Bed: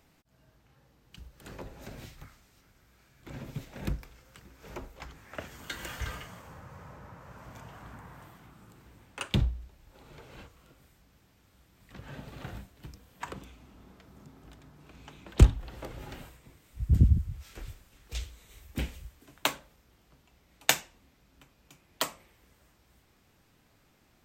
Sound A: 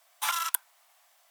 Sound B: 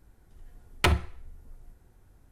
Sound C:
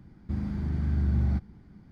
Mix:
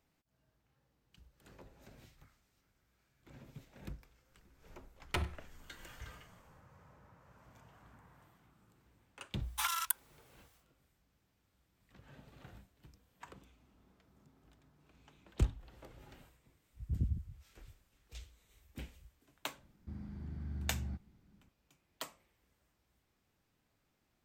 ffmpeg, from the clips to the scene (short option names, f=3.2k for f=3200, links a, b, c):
-filter_complex "[0:a]volume=-13.5dB[a];[2:a]aecho=1:1:97:0.0891[b];[1:a]highpass=770[c];[b]atrim=end=2.31,asetpts=PTS-STARTPTS,volume=-13dB,afade=t=in:d=0.004:c=hsin,afade=t=out:st=2.306:d=0.004:c=hsin,adelay=4300[d];[c]atrim=end=1.3,asetpts=PTS-STARTPTS,volume=-5.5dB,afade=t=in:d=0.1,afade=t=out:st=1.2:d=0.1,adelay=9360[e];[3:a]atrim=end=1.91,asetpts=PTS-STARTPTS,volume=-15dB,afade=t=in:d=0.004:c=hsin,afade=t=out:st=1.906:d=0.004:c=hsin,adelay=19580[f];[a][d][e][f]amix=inputs=4:normalize=0"